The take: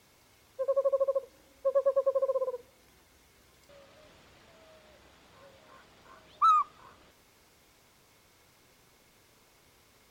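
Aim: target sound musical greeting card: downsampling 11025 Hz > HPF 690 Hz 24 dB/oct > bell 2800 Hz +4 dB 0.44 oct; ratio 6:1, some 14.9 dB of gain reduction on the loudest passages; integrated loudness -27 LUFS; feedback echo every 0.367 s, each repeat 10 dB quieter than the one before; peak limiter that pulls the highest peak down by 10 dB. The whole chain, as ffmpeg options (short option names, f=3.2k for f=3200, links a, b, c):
-af "acompressor=threshold=-38dB:ratio=6,alimiter=level_in=15dB:limit=-24dB:level=0:latency=1,volume=-15dB,aecho=1:1:367|734|1101|1468:0.316|0.101|0.0324|0.0104,aresample=11025,aresample=44100,highpass=f=690:w=0.5412,highpass=f=690:w=1.3066,equalizer=f=2.8k:t=o:w=0.44:g=4,volume=28dB"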